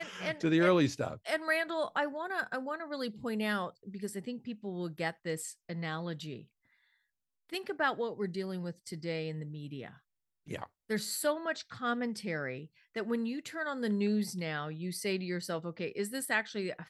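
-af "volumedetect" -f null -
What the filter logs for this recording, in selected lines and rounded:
mean_volume: -35.3 dB
max_volume: -14.7 dB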